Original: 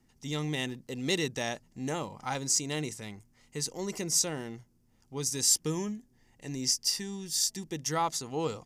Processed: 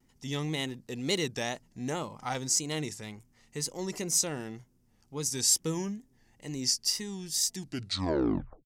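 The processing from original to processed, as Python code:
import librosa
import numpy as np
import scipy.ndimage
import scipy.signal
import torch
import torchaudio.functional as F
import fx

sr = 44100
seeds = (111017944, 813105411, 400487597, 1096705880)

y = fx.tape_stop_end(x, sr, length_s=1.08)
y = fx.wow_flutter(y, sr, seeds[0], rate_hz=2.1, depth_cents=89.0)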